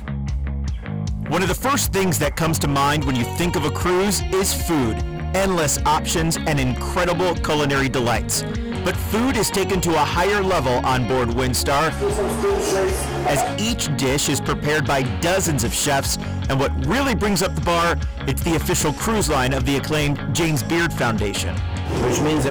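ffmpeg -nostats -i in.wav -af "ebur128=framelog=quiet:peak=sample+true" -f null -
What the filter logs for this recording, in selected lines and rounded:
Integrated loudness:
  I:         -20.2 LUFS
  Threshold: -30.2 LUFS
Loudness range:
  LRA:         1.1 LU
  Threshold: -40.0 LUFS
  LRA low:   -20.5 LUFS
  LRA high:  -19.3 LUFS
Sample peak:
  Peak:      -11.1 dBFS
True peak:
  Peak:      -11.1 dBFS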